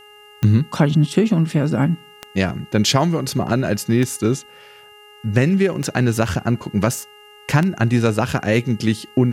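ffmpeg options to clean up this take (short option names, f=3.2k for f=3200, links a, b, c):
-af "adeclick=t=4,bandreject=f=417.5:t=h:w=4,bandreject=f=835:t=h:w=4,bandreject=f=1.2525k:t=h:w=4,bandreject=f=1.67k:t=h:w=4,bandreject=f=2.0875k:t=h:w=4,bandreject=f=2.8k:w=30,agate=range=-21dB:threshold=-37dB"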